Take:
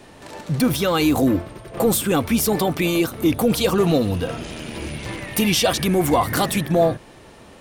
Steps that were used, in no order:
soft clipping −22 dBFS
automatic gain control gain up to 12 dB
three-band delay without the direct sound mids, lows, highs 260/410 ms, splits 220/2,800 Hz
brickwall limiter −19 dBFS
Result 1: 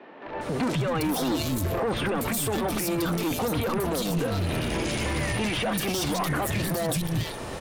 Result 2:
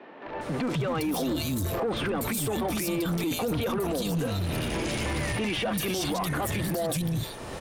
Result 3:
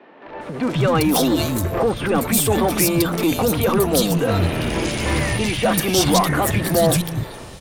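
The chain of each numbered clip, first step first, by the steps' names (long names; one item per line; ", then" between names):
soft clipping, then three-band delay without the direct sound, then automatic gain control, then brickwall limiter
three-band delay without the direct sound, then automatic gain control, then brickwall limiter, then soft clipping
brickwall limiter, then soft clipping, then automatic gain control, then three-band delay without the direct sound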